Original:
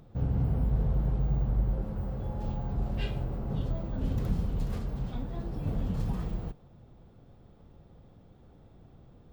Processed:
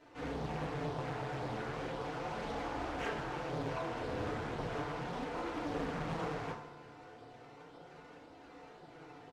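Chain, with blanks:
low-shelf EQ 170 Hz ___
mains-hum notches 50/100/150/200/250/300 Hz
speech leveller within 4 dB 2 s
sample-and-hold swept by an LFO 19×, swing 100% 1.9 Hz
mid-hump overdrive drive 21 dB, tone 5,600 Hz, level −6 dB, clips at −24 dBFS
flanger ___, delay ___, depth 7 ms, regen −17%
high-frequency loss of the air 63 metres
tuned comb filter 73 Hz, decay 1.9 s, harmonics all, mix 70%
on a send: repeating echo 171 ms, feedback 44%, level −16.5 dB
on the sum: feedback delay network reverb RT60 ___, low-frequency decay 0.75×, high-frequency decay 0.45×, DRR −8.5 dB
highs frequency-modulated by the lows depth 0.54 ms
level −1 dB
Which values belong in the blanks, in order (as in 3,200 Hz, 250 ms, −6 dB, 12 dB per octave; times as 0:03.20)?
−8 dB, 0.36 Hz, 3 ms, 0.56 s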